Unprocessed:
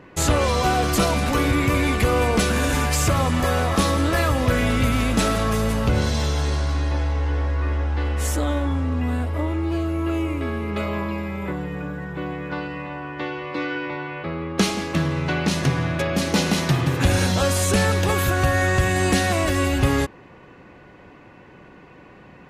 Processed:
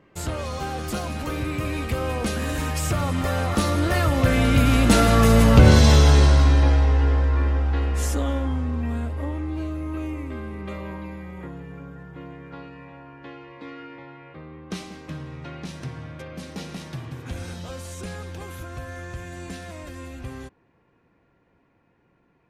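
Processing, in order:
source passing by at 0:05.87, 19 m/s, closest 14 metres
low-shelf EQ 350 Hz +3 dB
level +6.5 dB

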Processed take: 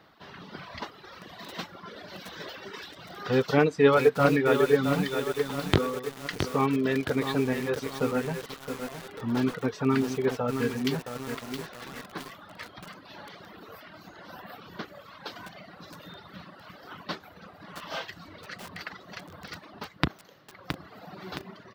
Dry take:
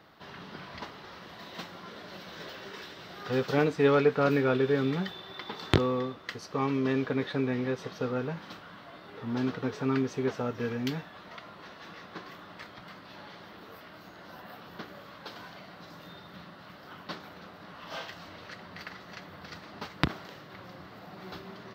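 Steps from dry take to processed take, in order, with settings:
reverb reduction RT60 1.8 s
automatic gain control gain up to 5 dB
feedback echo at a low word length 668 ms, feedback 55%, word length 6 bits, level −6.5 dB

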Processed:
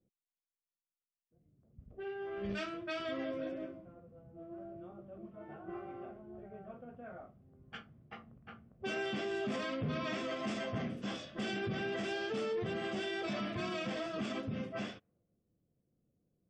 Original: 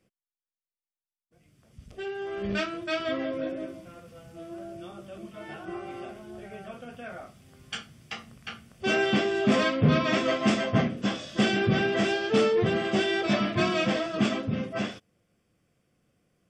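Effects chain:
low-pass that shuts in the quiet parts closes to 450 Hz, open at −25 dBFS
brickwall limiter −23 dBFS, peak gain reduction 10.5 dB
level −7 dB

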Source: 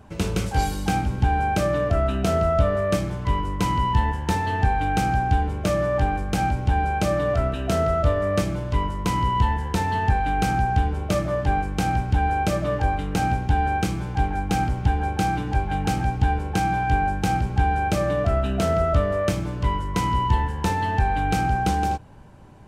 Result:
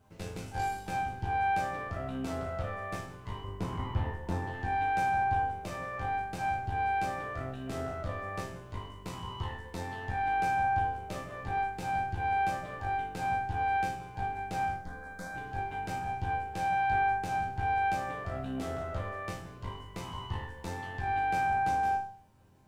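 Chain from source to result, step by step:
0:03.44–0:04.53: tilt shelving filter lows +6.5 dB, about 1,100 Hz
harmonic generator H 8 −19 dB, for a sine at −1.5 dBFS
bit-depth reduction 10 bits, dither none
0:14.76–0:15.35: phaser with its sweep stopped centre 550 Hz, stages 8
resonators tuned to a chord F2 minor, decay 0.51 s

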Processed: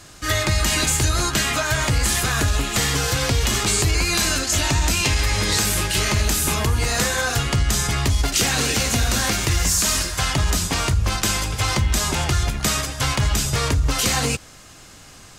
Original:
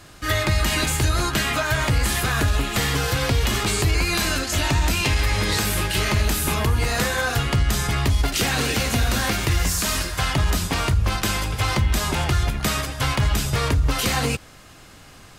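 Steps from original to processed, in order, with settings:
parametric band 6,800 Hz +7.5 dB 1.1 octaves

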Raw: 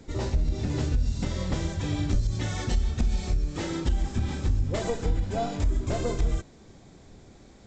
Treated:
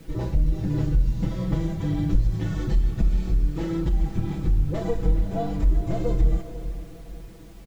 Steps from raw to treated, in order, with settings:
low-shelf EQ 420 Hz +9.5 dB
bit-depth reduction 8 bits, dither triangular
high-shelf EQ 4,300 Hz −11 dB
comb filter 6.1 ms, depth 84%
feedback delay with all-pass diffusion 480 ms, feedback 42%, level −13 dB
level −6 dB

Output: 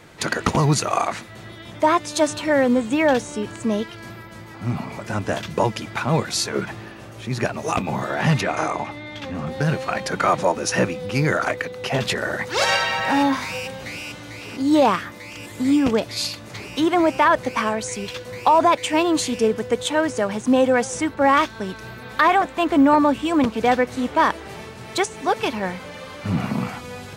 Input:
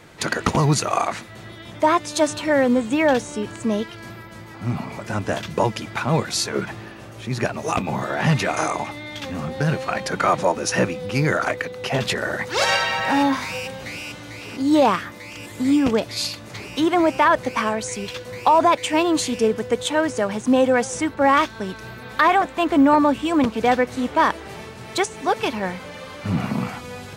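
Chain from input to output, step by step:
0:08.41–0:09.47: low-pass filter 3,100 Hz 6 dB per octave

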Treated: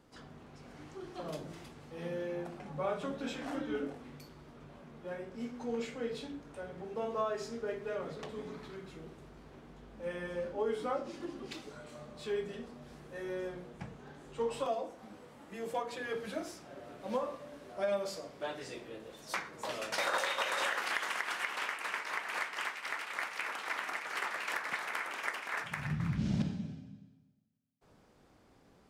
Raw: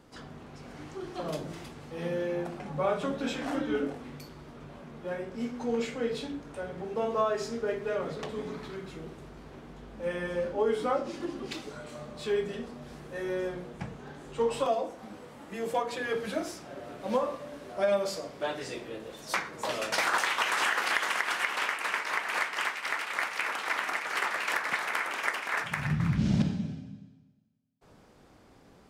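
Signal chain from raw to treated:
0:19.99–0:20.76: hollow resonant body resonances 550/3,700 Hz, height 16 dB → 13 dB
level −6.5 dB

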